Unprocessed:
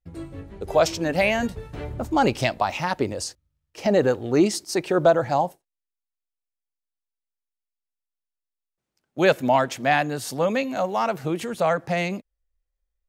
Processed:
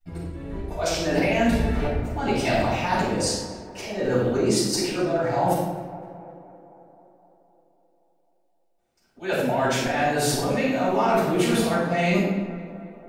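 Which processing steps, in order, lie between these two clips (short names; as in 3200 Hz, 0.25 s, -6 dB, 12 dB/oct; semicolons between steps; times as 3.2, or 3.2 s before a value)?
notches 50/100/150/200/250/300/350/400 Hz; gate -31 dBFS, range -7 dB; auto swell 0.48 s; reverse; compressor 12:1, threshold -35 dBFS, peak gain reduction 16 dB; reverse; transient shaper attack +1 dB, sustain +6 dB; on a send: tape echo 0.26 s, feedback 72%, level -13 dB, low-pass 2000 Hz; on the sum: shoebox room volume 350 m³, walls mixed, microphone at 7.5 m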